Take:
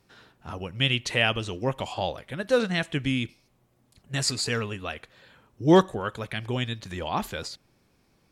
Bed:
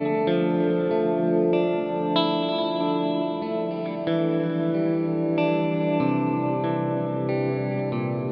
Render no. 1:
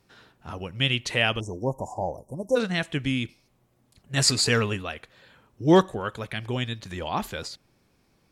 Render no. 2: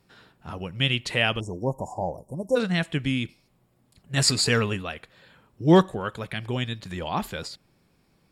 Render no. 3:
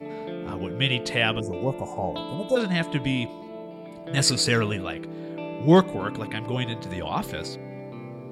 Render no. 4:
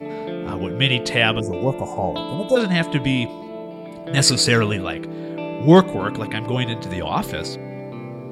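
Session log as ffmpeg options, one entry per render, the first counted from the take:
ffmpeg -i in.wav -filter_complex "[0:a]asplit=3[link_01][link_02][link_03];[link_01]afade=type=out:start_time=1.39:duration=0.02[link_04];[link_02]asuperstop=centerf=2400:order=20:qfactor=0.53,afade=type=in:start_time=1.39:duration=0.02,afade=type=out:start_time=2.55:duration=0.02[link_05];[link_03]afade=type=in:start_time=2.55:duration=0.02[link_06];[link_04][link_05][link_06]amix=inputs=3:normalize=0,asplit=3[link_07][link_08][link_09];[link_07]afade=type=out:start_time=4.16:duration=0.02[link_10];[link_08]acontrast=43,afade=type=in:start_time=4.16:duration=0.02,afade=type=out:start_time=4.81:duration=0.02[link_11];[link_09]afade=type=in:start_time=4.81:duration=0.02[link_12];[link_10][link_11][link_12]amix=inputs=3:normalize=0" out.wav
ffmpeg -i in.wav -af "equalizer=frequency=170:width_type=o:width=0.37:gain=5,bandreject=frequency=6100:width=8.3" out.wav
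ffmpeg -i in.wav -i bed.wav -filter_complex "[1:a]volume=-12dB[link_01];[0:a][link_01]amix=inputs=2:normalize=0" out.wav
ffmpeg -i in.wav -af "volume=5.5dB,alimiter=limit=-1dB:level=0:latency=1" out.wav

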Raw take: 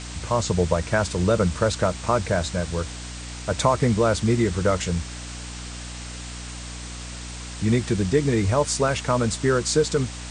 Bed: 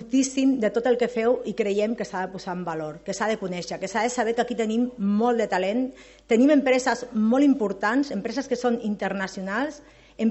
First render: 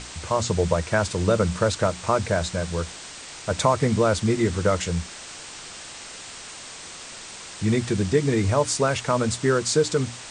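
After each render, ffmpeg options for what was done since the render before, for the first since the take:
ffmpeg -i in.wav -af "bandreject=frequency=60:width_type=h:width=6,bandreject=frequency=120:width_type=h:width=6,bandreject=frequency=180:width_type=h:width=6,bandreject=frequency=240:width_type=h:width=6,bandreject=frequency=300:width_type=h:width=6" out.wav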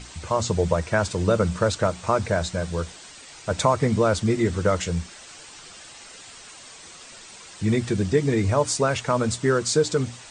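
ffmpeg -i in.wav -af "afftdn=noise_reduction=8:noise_floor=-40" out.wav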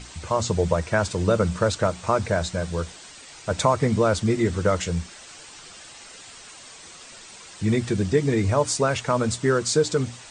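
ffmpeg -i in.wav -af anull out.wav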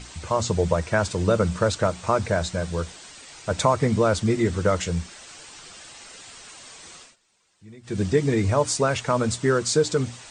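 ffmpeg -i in.wav -filter_complex "[0:a]asplit=3[link_01][link_02][link_03];[link_01]atrim=end=7.16,asetpts=PTS-STARTPTS,afade=type=out:start_time=6.97:duration=0.19:silence=0.0668344[link_04];[link_02]atrim=start=7.16:end=7.83,asetpts=PTS-STARTPTS,volume=-23.5dB[link_05];[link_03]atrim=start=7.83,asetpts=PTS-STARTPTS,afade=type=in:duration=0.19:silence=0.0668344[link_06];[link_04][link_05][link_06]concat=n=3:v=0:a=1" out.wav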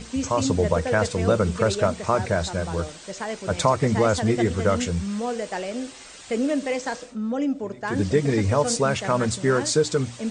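ffmpeg -i in.wav -i bed.wav -filter_complex "[1:a]volume=-6dB[link_01];[0:a][link_01]amix=inputs=2:normalize=0" out.wav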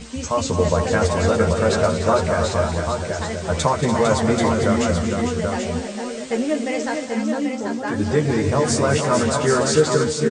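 ffmpeg -i in.wav -filter_complex "[0:a]asplit=2[link_01][link_02];[link_02]adelay=13,volume=-3.5dB[link_03];[link_01][link_03]amix=inputs=2:normalize=0,aecho=1:1:194|230|292|453|785:0.126|0.299|0.299|0.473|0.531" out.wav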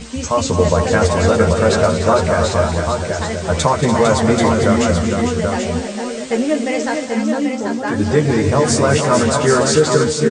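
ffmpeg -i in.wav -af "volume=4.5dB,alimiter=limit=-1dB:level=0:latency=1" out.wav

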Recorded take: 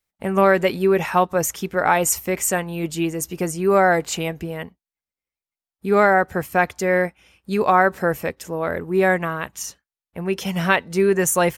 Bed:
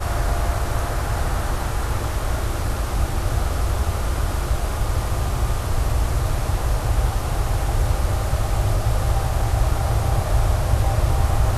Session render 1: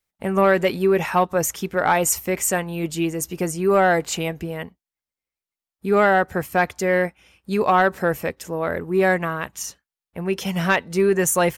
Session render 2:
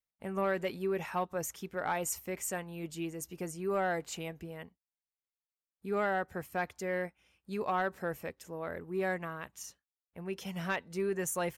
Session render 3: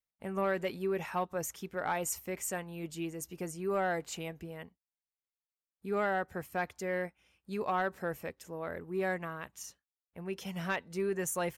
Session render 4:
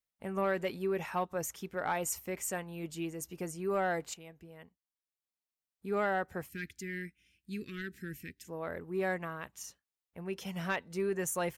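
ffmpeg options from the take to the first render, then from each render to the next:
ffmpeg -i in.wav -af "asoftclip=type=tanh:threshold=-6dB" out.wav
ffmpeg -i in.wav -af "volume=-15dB" out.wav
ffmpeg -i in.wav -af anull out.wav
ffmpeg -i in.wav -filter_complex "[0:a]asettb=1/sr,asplit=3[link_01][link_02][link_03];[link_01]atrim=end=6.494[link_04];[link_02]atrim=start=6.49:end=8.48,asetpts=PTS-STARTPTS,afade=type=in:duration=0.004:curve=qsin,afade=type=out:start_time=1.986:duration=0.004:curve=qsin,asuperstop=centerf=780:order=8:qfactor=0.56[link_05];[link_03]atrim=start=8.476[link_06];[link_04][link_05]acrossfade=duration=0.004:curve1=hsin:curve2=qsin[link_07];[link_07][link_06]acrossfade=duration=0.004:curve1=qsin:curve2=hsin,asplit=2[link_08][link_09];[link_08]atrim=end=4.14,asetpts=PTS-STARTPTS,afade=type=out:start_time=4.136:duration=0.004:curve=hsin:silence=0.237137[link_10];[link_09]atrim=start=4.14,asetpts=PTS-STARTPTS,afade=type=in:duration=1.8:silence=0.237137[link_11];[link_10][link_11]concat=n=2:v=0:a=1" out.wav

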